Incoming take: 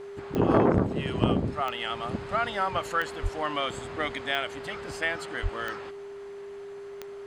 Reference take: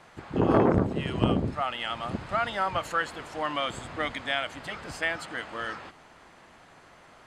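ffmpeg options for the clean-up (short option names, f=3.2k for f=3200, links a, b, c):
-filter_complex "[0:a]adeclick=t=4,bandreject=f=400:w=30,asplit=3[a][b][c];[a]afade=t=out:st=3.22:d=0.02[d];[b]highpass=f=140:w=0.5412,highpass=f=140:w=1.3066,afade=t=in:st=3.22:d=0.02,afade=t=out:st=3.34:d=0.02[e];[c]afade=t=in:st=3.34:d=0.02[f];[d][e][f]amix=inputs=3:normalize=0,asplit=3[g][h][i];[g]afade=t=out:st=5.42:d=0.02[j];[h]highpass=f=140:w=0.5412,highpass=f=140:w=1.3066,afade=t=in:st=5.42:d=0.02,afade=t=out:st=5.54:d=0.02[k];[i]afade=t=in:st=5.54:d=0.02[l];[j][k][l]amix=inputs=3:normalize=0"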